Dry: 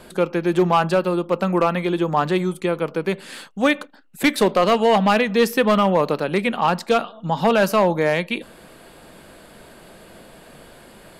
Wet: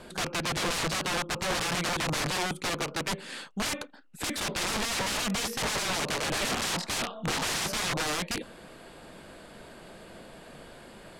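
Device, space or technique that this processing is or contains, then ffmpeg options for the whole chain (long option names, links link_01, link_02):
overflowing digital effects unit: -filter_complex "[0:a]asettb=1/sr,asplit=3[link_01][link_02][link_03];[link_01]atrim=end=6.104[link_04];[link_02]atrim=start=6.1:end=7.66,asetpts=PTS-STARTPTS,afade=type=in:duration=0.004:curve=qsin,afade=type=out:start_time=1.556:duration=0.004:curve=qsin,asplit=2[link_05][link_06];[link_06]adelay=26,volume=-2dB[link_07];[link_05][link_07]amix=inputs=2:normalize=0,atrim=end_sample=68796[link_08];[link_03]atrim=start=7.656[link_09];[link_04][link_08]acrossfade=duration=0.004:curve1=hsin:curve2=qsin[link_10];[link_10][link_09]acrossfade=duration=0.004:curve1=qsin:curve2=hsin,aeval=exprs='(mod(11.2*val(0)+1,2)-1)/11.2':channel_layout=same,lowpass=9100,volume=-3dB"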